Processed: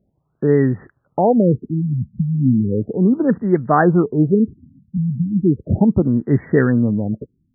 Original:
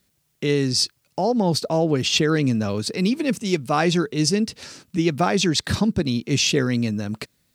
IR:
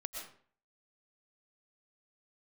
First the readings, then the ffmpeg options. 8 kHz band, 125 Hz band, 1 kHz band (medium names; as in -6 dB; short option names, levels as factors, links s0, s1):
under -40 dB, +6.5 dB, +3.5 dB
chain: -af "asuperstop=centerf=2100:order=4:qfactor=7.7,afftfilt=real='re*lt(b*sr/1024,230*pow(2200/230,0.5+0.5*sin(2*PI*0.35*pts/sr)))':imag='im*lt(b*sr/1024,230*pow(2200/230,0.5+0.5*sin(2*PI*0.35*pts/sr)))':win_size=1024:overlap=0.75,volume=2.11"